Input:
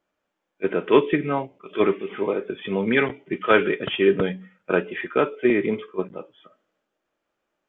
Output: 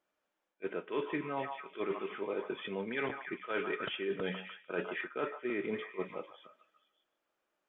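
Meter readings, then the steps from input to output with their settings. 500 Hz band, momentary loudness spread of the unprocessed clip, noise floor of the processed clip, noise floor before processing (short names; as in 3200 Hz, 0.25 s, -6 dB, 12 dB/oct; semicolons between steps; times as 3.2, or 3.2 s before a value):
-15.5 dB, 11 LU, -85 dBFS, -80 dBFS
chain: low shelf 220 Hz -9.5 dB; delay with a stepping band-pass 0.149 s, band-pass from 930 Hz, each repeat 0.7 oct, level -9 dB; reverse; compressor 8:1, threshold -28 dBFS, peak gain reduction 15.5 dB; reverse; gain -4.5 dB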